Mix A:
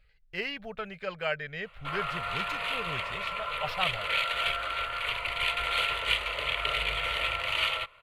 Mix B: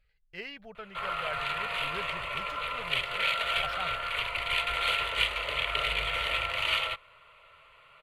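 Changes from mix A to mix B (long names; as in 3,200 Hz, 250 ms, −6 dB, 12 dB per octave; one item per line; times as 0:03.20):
speech −7.0 dB
background: entry −0.90 s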